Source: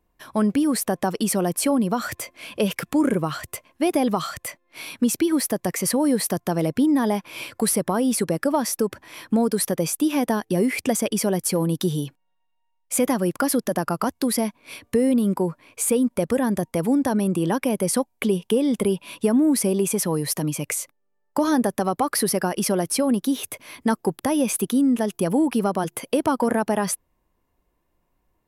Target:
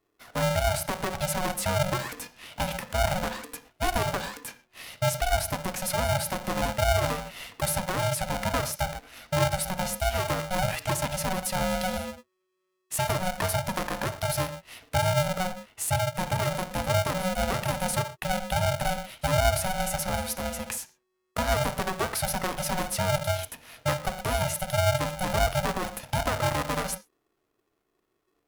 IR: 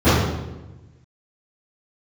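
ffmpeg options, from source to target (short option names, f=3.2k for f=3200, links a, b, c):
-filter_complex "[0:a]asplit=3[a][b][c];[a]afade=t=out:st=16.65:d=0.02[d];[b]afreqshift=-16,afade=t=in:st=16.65:d=0.02,afade=t=out:st=18.72:d=0.02[e];[c]afade=t=in:st=18.72:d=0.02[f];[d][e][f]amix=inputs=3:normalize=0,asplit=2[g][h];[1:a]atrim=start_sample=2205,atrim=end_sample=6174,highshelf=f=2k:g=10[i];[h][i]afir=irnorm=-1:irlink=0,volume=-37.5dB[j];[g][j]amix=inputs=2:normalize=0,aeval=exprs='val(0)*sgn(sin(2*PI*370*n/s))':c=same,volume=-7dB"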